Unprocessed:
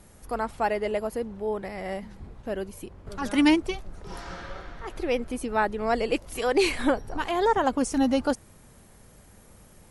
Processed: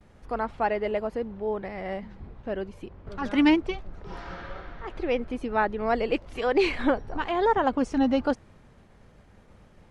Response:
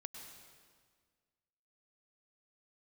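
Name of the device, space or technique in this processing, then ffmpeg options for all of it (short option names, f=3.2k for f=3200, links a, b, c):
hearing-loss simulation: -af "lowpass=3.4k,agate=range=-33dB:threshold=-51dB:ratio=3:detection=peak"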